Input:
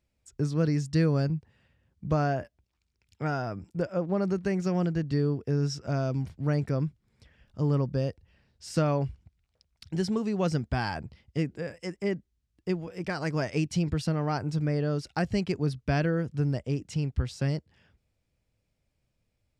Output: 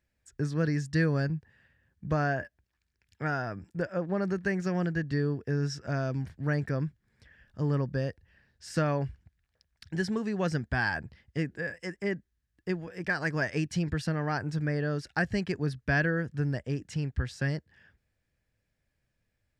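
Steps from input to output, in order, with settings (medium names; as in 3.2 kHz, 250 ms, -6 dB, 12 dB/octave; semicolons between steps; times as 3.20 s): peaking EQ 1.7 kHz +14 dB 0.35 oct; trim -2.5 dB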